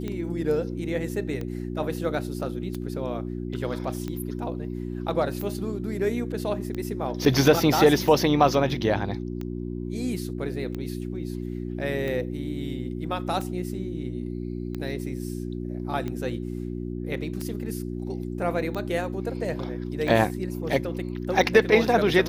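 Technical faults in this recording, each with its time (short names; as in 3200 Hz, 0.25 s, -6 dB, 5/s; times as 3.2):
hum 60 Hz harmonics 6 -32 dBFS
tick 45 rpm -20 dBFS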